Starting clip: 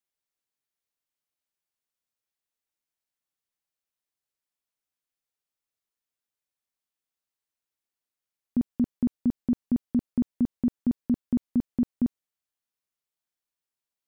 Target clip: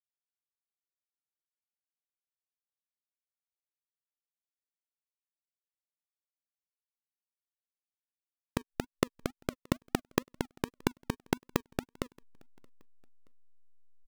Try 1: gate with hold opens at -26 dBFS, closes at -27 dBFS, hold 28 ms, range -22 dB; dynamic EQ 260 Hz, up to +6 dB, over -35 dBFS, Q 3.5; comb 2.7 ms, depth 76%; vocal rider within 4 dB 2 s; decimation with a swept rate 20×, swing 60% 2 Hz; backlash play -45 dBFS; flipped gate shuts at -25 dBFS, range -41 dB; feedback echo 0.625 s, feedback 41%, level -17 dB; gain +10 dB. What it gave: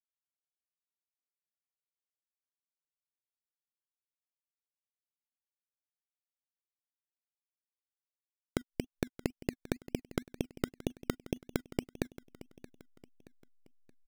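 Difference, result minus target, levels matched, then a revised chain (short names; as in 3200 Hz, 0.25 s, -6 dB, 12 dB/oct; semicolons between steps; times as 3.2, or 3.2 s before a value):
echo-to-direct +12 dB; decimation with a swept rate: distortion -11 dB
gate with hold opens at -26 dBFS, closes at -27 dBFS, hold 28 ms, range -22 dB; dynamic EQ 260 Hz, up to +6 dB, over -35 dBFS, Q 3.5; comb 2.7 ms, depth 76%; vocal rider within 4 dB 2 s; decimation with a swept rate 50×, swing 60% 2 Hz; backlash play -45 dBFS; flipped gate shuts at -25 dBFS, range -41 dB; feedback echo 0.625 s, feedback 41%, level -29 dB; gain +10 dB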